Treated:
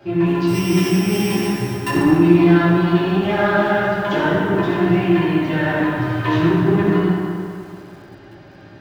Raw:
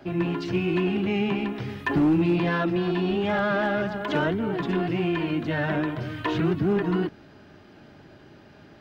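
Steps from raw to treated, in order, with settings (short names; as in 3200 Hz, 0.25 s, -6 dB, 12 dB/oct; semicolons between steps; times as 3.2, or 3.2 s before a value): 0.47–1.88 sample sorter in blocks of 16 samples; reverb RT60 2.4 s, pre-delay 4 ms, DRR -9 dB; lo-fi delay 0.199 s, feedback 35%, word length 6-bit, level -14.5 dB; gain -2 dB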